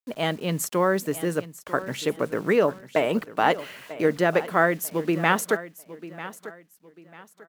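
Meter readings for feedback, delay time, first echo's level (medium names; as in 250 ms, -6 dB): 30%, 944 ms, -15.5 dB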